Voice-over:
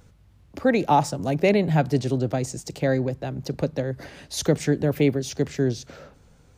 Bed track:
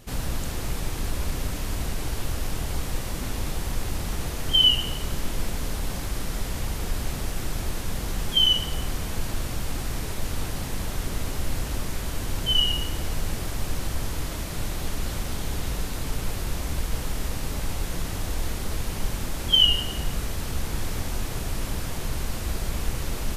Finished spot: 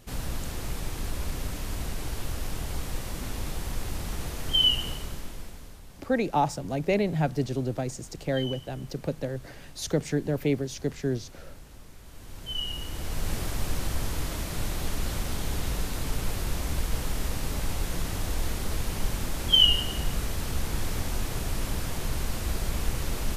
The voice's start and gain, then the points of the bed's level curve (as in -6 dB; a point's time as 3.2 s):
5.45 s, -5.5 dB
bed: 4.9 s -4 dB
5.84 s -19.5 dB
11.97 s -19.5 dB
13.32 s -1 dB